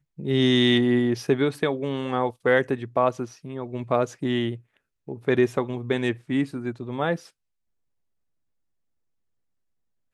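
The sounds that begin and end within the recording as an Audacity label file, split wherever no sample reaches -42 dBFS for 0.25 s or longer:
5.080000	7.270000	sound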